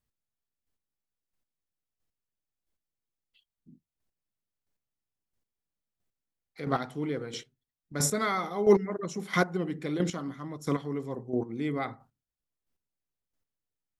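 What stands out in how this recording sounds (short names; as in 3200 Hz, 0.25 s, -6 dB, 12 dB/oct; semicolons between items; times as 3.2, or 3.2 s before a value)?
chopped level 1.5 Hz, depth 65%, duty 15%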